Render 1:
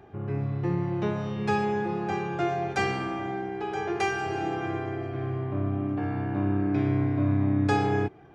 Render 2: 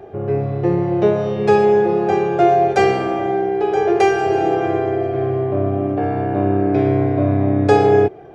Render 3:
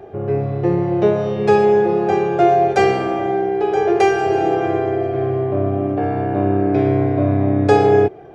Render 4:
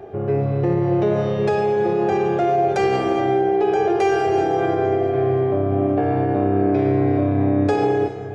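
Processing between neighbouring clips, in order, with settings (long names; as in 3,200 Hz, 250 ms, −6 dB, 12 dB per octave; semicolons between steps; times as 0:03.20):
flat-topped bell 520 Hz +10.5 dB 1.2 octaves; level +6.5 dB
no processing that can be heard
brickwall limiter −11 dBFS, peak gain reduction 9 dB; reverb whose tail is shaped and stops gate 450 ms flat, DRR 8.5 dB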